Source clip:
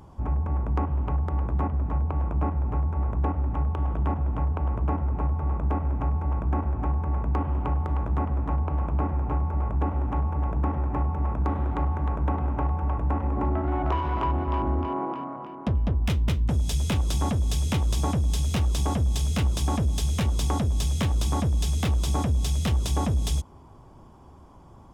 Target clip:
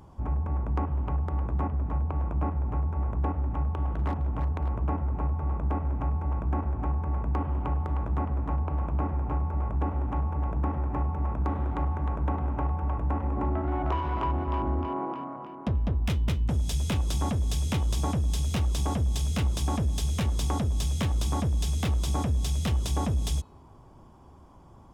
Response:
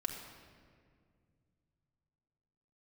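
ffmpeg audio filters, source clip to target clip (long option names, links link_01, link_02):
-filter_complex "[0:a]bandreject=frequency=428.1:width_type=h:width=4,bandreject=frequency=856.2:width_type=h:width=4,bandreject=frequency=1284.3:width_type=h:width=4,bandreject=frequency=1712.4:width_type=h:width=4,bandreject=frequency=2140.5:width_type=h:width=4,bandreject=frequency=2568.6:width_type=h:width=4,bandreject=frequency=2996.7:width_type=h:width=4,bandreject=frequency=3424.8:width_type=h:width=4,bandreject=frequency=3852.9:width_type=h:width=4,bandreject=frequency=4281:width_type=h:width=4,asettb=1/sr,asplit=3[link_01][link_02][link_03];[link_01]atrim=end=3.914[link_04];[link_02]atrim=start=3.91:end=4.79,asetpts=PTS-STARTPTS,afade=type=in:duration=0.004:curve=qsin,afade=type=out:start_time=0.876:duration=0.004:curve=qsin,aeval=exprs='0.112*(abs(mod(val(0)/0.112+3,4)-2)-1)':channel_layout=same[link_05];[link_03]atrim=start=4.786[link_06];[link_04][link_05]acrossfade=duration=0.004:curve1=hsin:curve2=qsin[link_07];[link_07][link_06]acrossfade=duration=0.004:curve1=qsin:curve2=hsin,volume=-2.5dB"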